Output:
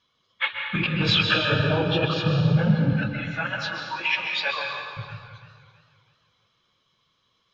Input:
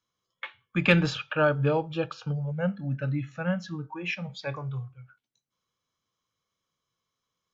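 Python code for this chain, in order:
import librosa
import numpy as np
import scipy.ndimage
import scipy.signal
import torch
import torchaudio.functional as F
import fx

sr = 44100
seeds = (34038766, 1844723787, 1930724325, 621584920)

y = fx.phase_scramble(x, sr, seeds[0], window_ms=50)
y = fx.lowpass_res(y, sr, hz=3700.0, q=2.0)
y = fx.over_compress(y, sr, threshold_db=-30.0, ratio=-1.0)
y = fx.highpass(y, sr, hz=990.0, slope=12, at=(2.93, 4.97))
y = fx.rev_plate(y, sr, seeds[1], rt60_s=1.7, hf_ratio=0.85, predelay_ms=115, drr_db=2.0)
y = fx.echo_warbled(y, sr, ms=325, feedback_pct=43, rate_hz=2.8, cents=67, wet_db=-18)
y = y * librosa.db_to_amplitude(7.0)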